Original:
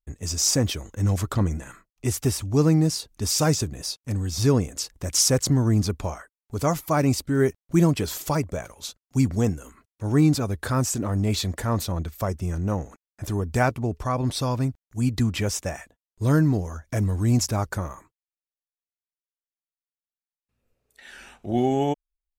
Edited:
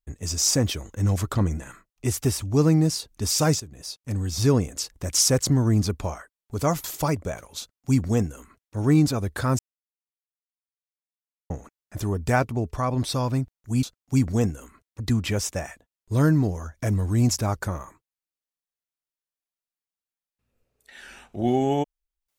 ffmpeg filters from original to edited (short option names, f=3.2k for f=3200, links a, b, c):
-filter_complex "[0:a]asplit=7[a][b][c][d][e][f][g];[a]atrim=end=3.6,asetpts=PTS-STARTPTS,afade=t=out:st=3.596:d=0.004:c=hsin:silence=0.158489[h];[b]atrim=start=3.6:end=6.842,asetpts=PTS-STARTPTS,afade=t=in:d=0.61:silence=0.158489[i];[c]atrim=start=8.108:end=10.86,asetpts=PTS-STARTPTS,afade=t=out:st=2.748:d=0.004:c=hsin[j];[d]atrim=start=10.86:end=12.77,asetpts=PTS-STARTPTS,volume=0[k];[e]atrim=start=12.77:end=15.102,asetpts=PTS-STARTPTS,afade=t=in:d=0.004:c=hsin[l];[f]atrim=start=8.858:end=10.032[m];[g]atrim=start=15.098[n];[h][i]concat=n=2:v=0:a=1[o];[j][k][l]concat=n=3:v=0:a=1[p];[o][p]acrossfade=d=0.004:c1=hsin:c2=hsin[q];[q][m]acrossfade=d=0.004:c1=hsin:c2=hsin[r];[r][n]acrossfade=d=0.004:c1=hsin:c2=hsin"